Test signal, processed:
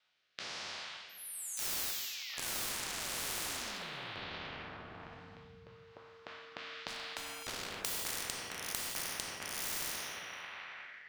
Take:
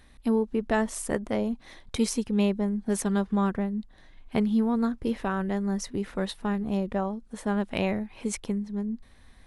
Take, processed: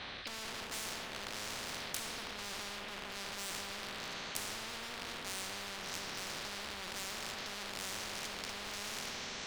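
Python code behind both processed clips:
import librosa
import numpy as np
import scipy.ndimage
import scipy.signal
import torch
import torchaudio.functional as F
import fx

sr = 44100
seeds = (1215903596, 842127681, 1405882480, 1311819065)

y = fx.spec_trails(x, sr, decay_s=2.4)
y = scipy.signal.sosfilt(scipy.signal.butter(4, 4200.0, 'lowpass', fs=sr, output='sos'), y)
y = fx.env_lowpass_down(y, sr, base_hz=720.0, full_db=-23.0)
y = scipy.signal.sosfilt(scipy.signal.butter(2, 200.0, 'highpass', fs=sr, output='sos'), y)
y = fx.peak_eq(y, sr, hz=300.0, db=-15.0, octaves=1.9)
y = fx.transient(y, sr, attack_db=-1, sustain_db=7)
y = fx.rider(y, sr, range_db=4, speed_s=0.5)
y = fx.rotary(y, sr, hz=1.1)
y = 10.0 ** (-36.5 / 20.0) * (np.abs((y / 10.0 ** (-36.5 / 20.0) + 3.0) % 4.0 - 2.0) - 1.0)
y = fx.echo_feedback(y, sr, ms=255, feedback_pct=30, wet_db=-23.5)
y = fx.rev_gated(y, sr, seeds[0], gate_ms=300, shape='falling', drr_db=3.5)
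y = fx.spectral_comp(y, sr, ratio=10.0)
y = y * librosa.db_to_amplitude(15.5)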